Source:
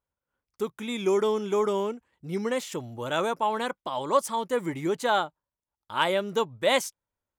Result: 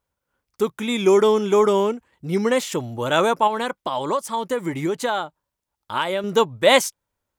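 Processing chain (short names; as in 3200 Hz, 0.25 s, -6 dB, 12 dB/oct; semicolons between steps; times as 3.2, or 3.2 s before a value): 3.47–6.24 compressor 5:1, threshold -29 dBFS, peak gain reduction 12 dB; gain +8.5 dB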